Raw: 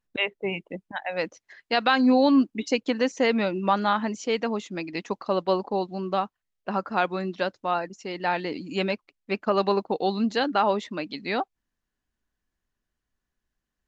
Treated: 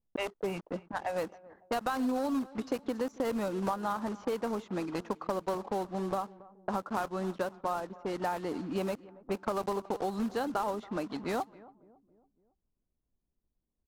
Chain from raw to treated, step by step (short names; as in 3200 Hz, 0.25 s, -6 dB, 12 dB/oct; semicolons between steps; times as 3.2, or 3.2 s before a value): block floating point 3-bit; resonant high shelf 1600 Hz -8 dB, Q 1.5; compressor 5:1, threshold -30 dBFS, peak gain reduction 14 dB; on a send: feedback echo 0.278 s, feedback 51%, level -20.5 dB; on the sum: low-pass opened by the level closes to 480 Hz, open at -29 dBFS